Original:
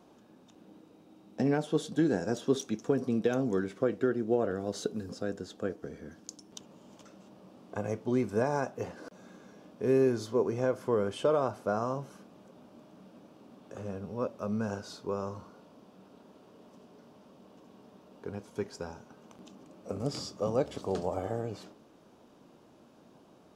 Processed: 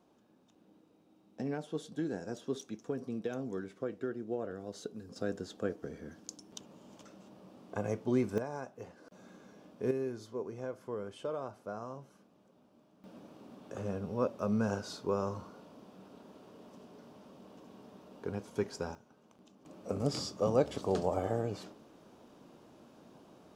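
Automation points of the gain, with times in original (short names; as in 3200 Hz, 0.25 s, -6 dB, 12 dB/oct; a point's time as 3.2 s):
-9 dB
from 5.16 s -1 dB
from 8.38 s -10.5 dB
from 9.12 s -3 dB
from 9.91 s -11 dB
from 13.04 s +1.5 dB
from 18.95 s -9.5 dB
from 19.65 s +1 dB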